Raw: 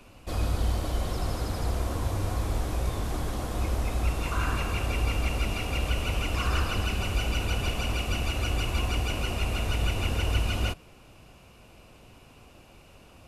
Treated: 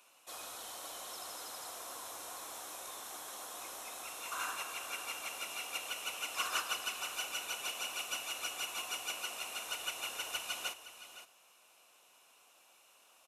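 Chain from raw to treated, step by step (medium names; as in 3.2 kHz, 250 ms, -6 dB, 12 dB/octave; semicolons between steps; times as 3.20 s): high-pass 1.3 kHz 12 dB/octave; peaking EQ 2.1 kHz -10 dB 1.6 oct; band-stop 4.7 kHz, Q 6.4; on a send: delay 516 ms -10 dB; on the sum: upward expansion 2.5:1, over -43 dBFS; trim +7 dB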